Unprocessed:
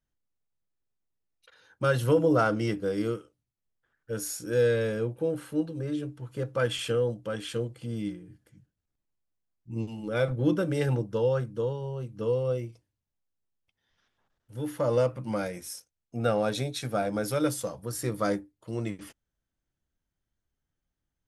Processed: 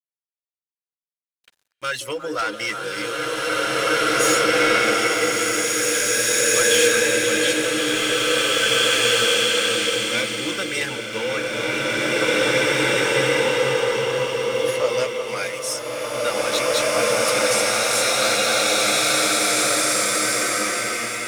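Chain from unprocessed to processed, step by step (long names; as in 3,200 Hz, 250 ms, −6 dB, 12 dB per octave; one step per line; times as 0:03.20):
meter weighting curve ITU-R 468
reverb reduction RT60 0.51 s
parametric band 2,200 Hz +8.5 dB 0.56 octaves
speech leveller within 3 dB 2 s
leveller curve on the samples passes 1
soft clipping −17 dBFS, distortion −17 dB
echo through a band-pass that steps 180 ms, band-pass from 370 Hz, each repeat 1.4 octaves, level −4 dB
dead-zone distortion −50 dBFS
slow-attack reverb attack 2,380 ms, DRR −10 dB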